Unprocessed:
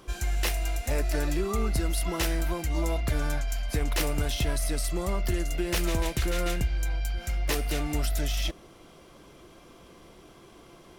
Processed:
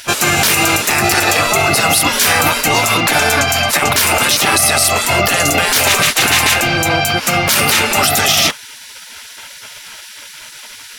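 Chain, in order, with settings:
hollow resonant body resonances 790/1,200/2,600 Hz, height 17 dB, ringing for 90 ms
gate on every frequency bin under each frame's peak −20 dB weak
boost into a limiter +29.5 dB
level −1 dB

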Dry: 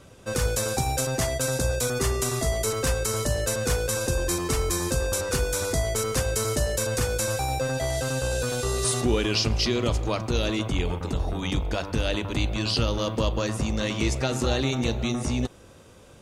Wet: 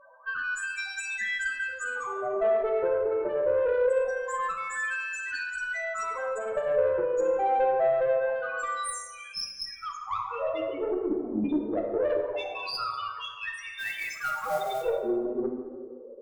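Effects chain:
0:04.87–0:05.39: meter weighting curve A
0:08.87–0:09.83: gain on a spectral selection 300–5,100 Hz −16 dB
low-pass filter 11,000 Hz 24 dB per octave
mains-hum notches 50/100/150/200/250 Hz
dynamic equaliser 190 Hz, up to −4 dB, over −42 dBFS, Q 2.2
in parallel at −2 dB: downward compressor, threshold −33 dBFS, peak gain reduction 12.5 dB
on the sum: auto-filter high-pass sine 0.24 Hz 330–1,900 Hz
spectral peaks only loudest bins 4
0:10.91–0:11.44: frequency shifter −72 Hz
0:13.78–0:14.82: noise that follows the level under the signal 17 dB
tube saturation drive 22 dB, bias 0.25
dense smooth reverb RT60 1.5 s, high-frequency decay 0.55×, DRR 1.5 dB

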